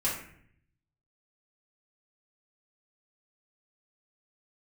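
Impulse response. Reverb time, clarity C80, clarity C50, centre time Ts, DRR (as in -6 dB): 0.60 s, 8.0 dB, 4.0 dB, 40 ms, -8.5 dB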